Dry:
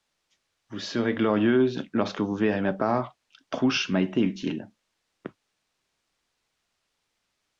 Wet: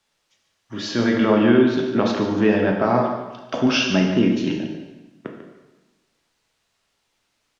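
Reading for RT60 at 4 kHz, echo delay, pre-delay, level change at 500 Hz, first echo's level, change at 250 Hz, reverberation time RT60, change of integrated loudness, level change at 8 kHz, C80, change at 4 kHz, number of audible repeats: 1.0 s, 145 ms, 6 ms, +6.5 dB, -11.5 dB, +6.5 dB, 1.1 s, +6.0 dB, no reading, 6.0 dB, +6.5 dB, 1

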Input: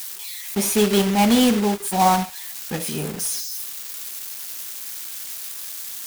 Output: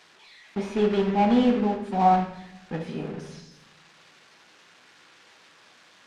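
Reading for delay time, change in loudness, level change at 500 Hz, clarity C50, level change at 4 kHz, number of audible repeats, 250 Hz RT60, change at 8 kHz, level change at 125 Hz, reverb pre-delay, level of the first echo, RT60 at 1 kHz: no echo, -2.0 dB, -3.0 dB, 9.0 dB, -14.0 dB, no echo, 1.2 s, under -25 dB, -4.0 dB, 4 ms, no echo, 0.75 s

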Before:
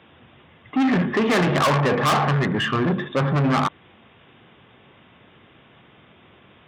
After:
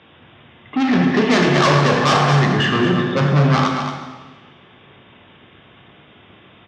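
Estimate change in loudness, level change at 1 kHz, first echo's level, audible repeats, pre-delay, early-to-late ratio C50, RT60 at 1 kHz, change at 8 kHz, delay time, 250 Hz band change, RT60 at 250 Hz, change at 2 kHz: +4.5 dB, +4.0 dB, -8.0 dB, 1, 17 ms, 2.5 dB, 1.3 s, +5.5 dB, 226 ms, +4.5 dB, 1.3 s, +5.0 dB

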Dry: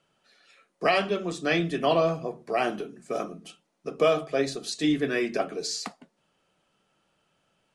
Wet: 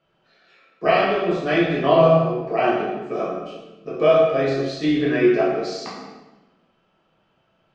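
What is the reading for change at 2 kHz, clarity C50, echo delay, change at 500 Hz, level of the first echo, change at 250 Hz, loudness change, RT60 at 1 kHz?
+4.5 dB, 1.0 dB, no echo, +8.5 dB, no echo, +7.5 dB, +7.5 dB, 1.1 s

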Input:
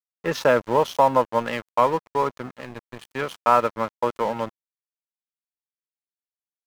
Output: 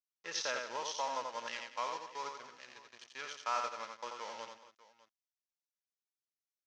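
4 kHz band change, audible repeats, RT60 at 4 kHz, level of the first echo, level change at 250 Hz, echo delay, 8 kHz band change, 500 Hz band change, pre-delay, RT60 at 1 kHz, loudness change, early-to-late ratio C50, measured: -5.0 dB, 4, no reverb, -4.5 dB, -28.0 dB, 86 ms, -1.5 dB, -22.5 dB, no reverb, no reverb, -17.5 dB, no reverb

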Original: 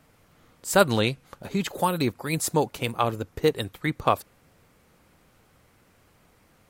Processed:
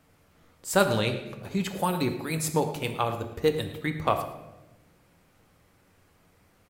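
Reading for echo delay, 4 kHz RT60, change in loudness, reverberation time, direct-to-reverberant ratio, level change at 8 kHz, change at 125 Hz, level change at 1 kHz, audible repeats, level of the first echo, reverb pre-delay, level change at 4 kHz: 109 ms, 0.75 s, -2.5 dB, 1.0 s, 5.5 dB, -3.0 dB, -1.5 dB, -3.0 dB, 1, -16.5 dB, 10 ms, -3.0 dB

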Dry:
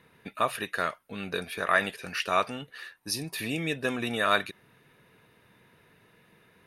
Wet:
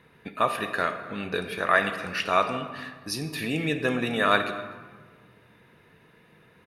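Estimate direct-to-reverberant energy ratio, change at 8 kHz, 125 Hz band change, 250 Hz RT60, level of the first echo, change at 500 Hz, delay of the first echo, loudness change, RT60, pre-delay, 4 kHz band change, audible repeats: 8.0 dB, -2.0 dB, +4.5 dB, 2.1 s, -22.0 dB, +4.0 dB, 250 ms, +3.0 dB, 1.5 s, 4 ms, +1.0 dB, 1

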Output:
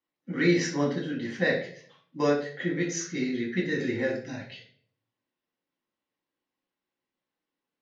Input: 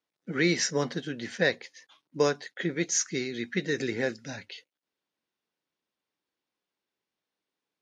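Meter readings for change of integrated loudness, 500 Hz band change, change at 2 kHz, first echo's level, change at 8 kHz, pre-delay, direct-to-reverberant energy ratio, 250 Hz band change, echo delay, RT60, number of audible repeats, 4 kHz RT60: +0.5 dB, +1.0 dB, 0.0 dB, no echo, -7.0 dB, 4 ms, -2.5 dB, +4.0 dB, no echo, 0.50 s, no echo, 0.45 s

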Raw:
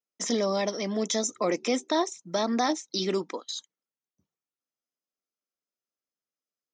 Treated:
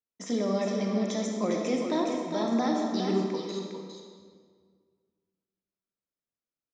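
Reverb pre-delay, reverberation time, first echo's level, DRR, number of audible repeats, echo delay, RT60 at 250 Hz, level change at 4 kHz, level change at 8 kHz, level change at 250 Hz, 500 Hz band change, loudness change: 34 ms, 1.8 s, -6.5 dB, -0.5 dB, 1, 407 ms, 2.0 s, -7.0 dB, -9.5 dB, +3.0 dB, -1.0 dB, -0.5 dB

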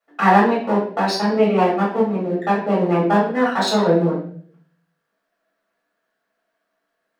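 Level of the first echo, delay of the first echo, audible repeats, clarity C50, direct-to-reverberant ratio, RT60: no echo, no echo, no echo, 4.5 dB, -8.0 dB, 0.55 s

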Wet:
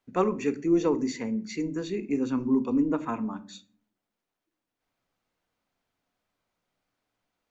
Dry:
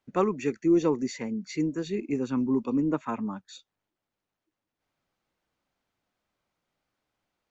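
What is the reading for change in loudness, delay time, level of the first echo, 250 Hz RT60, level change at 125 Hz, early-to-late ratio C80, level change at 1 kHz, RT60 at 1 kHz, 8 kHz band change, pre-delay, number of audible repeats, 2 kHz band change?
+0.5 dB, no echo, no echo, 0.80 s, -2.0 dB, 22.5 dB, +0.5 dB, 0.40 s, no reading, 3 ms, no echo, +0.5 dB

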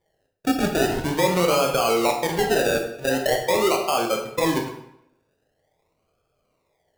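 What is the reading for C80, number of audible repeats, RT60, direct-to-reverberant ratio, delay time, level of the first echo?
9.0 dB, no echo, 0.80 s, 2.0 dB, no echo, no echo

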